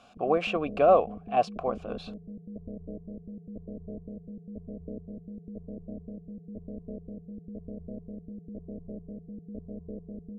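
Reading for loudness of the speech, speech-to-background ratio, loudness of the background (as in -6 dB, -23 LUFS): -26.0 LUFS, 16.5 dB, -42.5 LUFS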